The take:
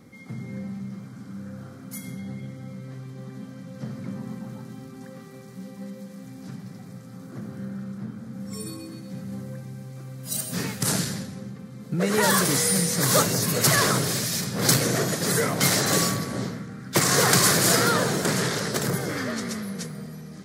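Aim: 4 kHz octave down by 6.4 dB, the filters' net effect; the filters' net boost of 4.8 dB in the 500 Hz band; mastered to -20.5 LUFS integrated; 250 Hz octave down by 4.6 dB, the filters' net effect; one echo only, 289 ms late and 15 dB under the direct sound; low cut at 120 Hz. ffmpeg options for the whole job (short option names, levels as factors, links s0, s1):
-af "highpass=120,equalizer=f=250:t=o:g=-8.5,equalizer=f=500:t=o:g=8,equalizer=f=4000:t=o:g=-8.5,aecho=1:1:289:0.178,volume=1.26"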